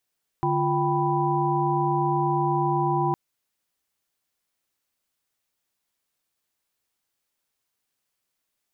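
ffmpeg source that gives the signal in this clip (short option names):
-f lavfi -i "aevalsrc='0.0501*(sin(2*PI*146.83*t)+sin(2*PI*349.23*t)+sin(2*PI*783.99*t)+sin(2*PI*987.77*t))':d=2.71:s=44100"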